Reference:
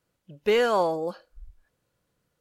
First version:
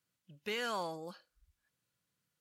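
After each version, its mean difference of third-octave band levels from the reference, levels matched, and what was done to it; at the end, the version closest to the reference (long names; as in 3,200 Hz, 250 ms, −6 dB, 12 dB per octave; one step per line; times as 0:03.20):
5.0 dB: high-pass filter 140 Hz 12 dB per octave
parametric band 500 Hz −13.5 dB 2.4 octaves
brickwall limiter −23 dBFS, peak gain reduction 4.5 dB
level −3.5 dB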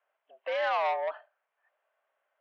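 11.0 dB: brickwall limiter −19.5 dBFS, peak gain reduction 7.5 dB
high-frequency loss of the air 410 metres
single-sideband voice off tune +98 Hz 520–3,100 Hz
saturating transformer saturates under 1,300 Hz
level +4.5 dB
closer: first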